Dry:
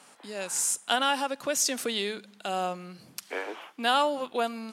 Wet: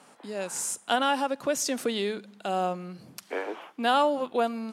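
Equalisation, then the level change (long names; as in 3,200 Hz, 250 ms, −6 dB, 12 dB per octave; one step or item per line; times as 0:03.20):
tilt shelving filter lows +4.5 dB, about 1,300 Hz
0.0 dB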